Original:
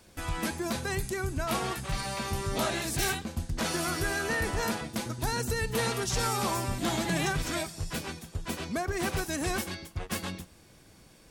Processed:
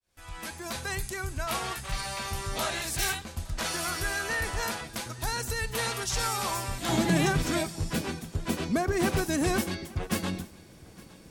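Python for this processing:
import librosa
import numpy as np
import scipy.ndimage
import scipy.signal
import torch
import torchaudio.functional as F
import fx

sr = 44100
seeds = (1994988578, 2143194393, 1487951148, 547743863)

y = fx.fade_in_head(x, sr, length_s=0.82)
y = fx.peak_eq(y, sr, hz=240.0, db=fx.steps((0.0, -9.5), (6.89, 5.5)), octaves=2.3)
y = y + 10.0 ** (-22.5 / 20.0) * np.pad(y, (int(862 * sr / 1000.0), 0))[:len(y)]
y = y * 10.0 ** (1.5 / 20.0)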